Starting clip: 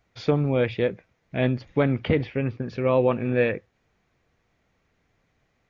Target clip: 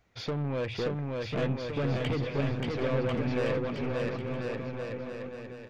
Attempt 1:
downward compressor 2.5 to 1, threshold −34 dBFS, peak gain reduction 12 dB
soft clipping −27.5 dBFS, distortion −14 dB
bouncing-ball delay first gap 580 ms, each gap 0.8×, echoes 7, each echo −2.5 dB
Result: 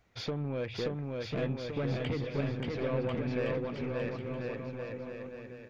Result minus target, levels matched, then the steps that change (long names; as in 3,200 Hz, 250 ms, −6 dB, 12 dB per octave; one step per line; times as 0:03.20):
downward compressor: peak gain reduction +6.5 dB
change: downward compressor 2.5 to 1, threshold −23.5 dBFS, peak gain reduction 6 dB